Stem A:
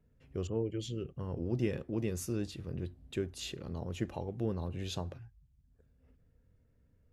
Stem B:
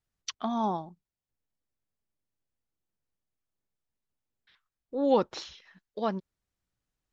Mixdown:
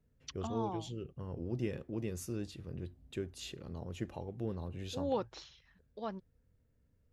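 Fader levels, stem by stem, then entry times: −4.0, −10.5 decibels; 0.00, 0.00 seconds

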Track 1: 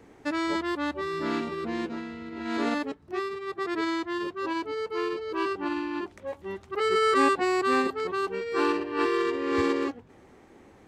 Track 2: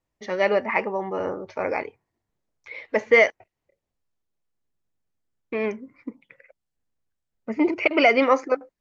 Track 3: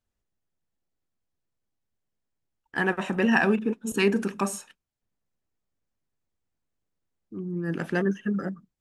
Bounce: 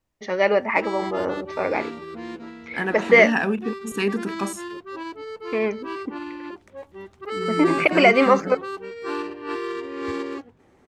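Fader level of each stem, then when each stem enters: −3.5, +2.0, −1.0 decibels; 0.50, 0.00, 0.00 seconds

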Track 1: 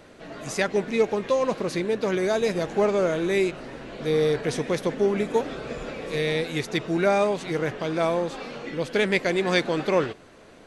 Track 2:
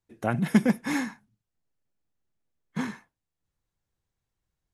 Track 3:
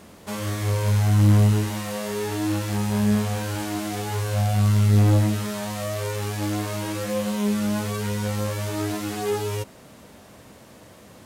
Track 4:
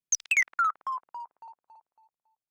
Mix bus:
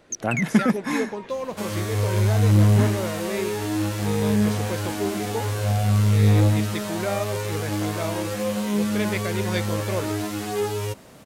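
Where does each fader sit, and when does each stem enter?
−6.5, +2.0, 0.0, −5.0 decibels; 0.00, 0.00, 1.30, 0.00 seconds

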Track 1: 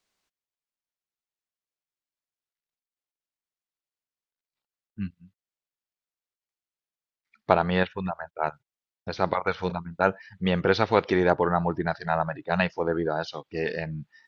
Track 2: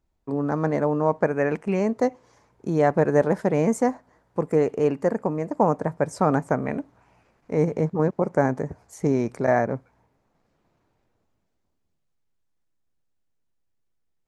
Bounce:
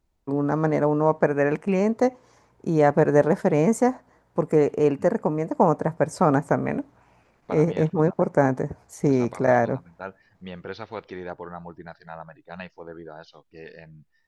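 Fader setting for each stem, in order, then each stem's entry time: −13.5, +1.5 decibels; 0.00, 0.00 seconds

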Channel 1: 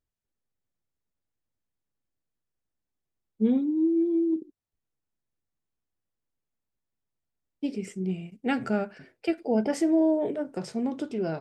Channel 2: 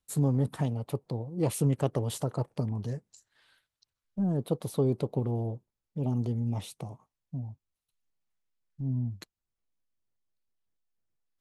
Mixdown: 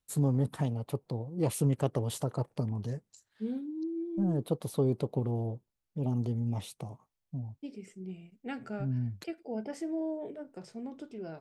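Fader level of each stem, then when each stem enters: −12.0, −1.5 decibels; 0.00, 0.00 seconds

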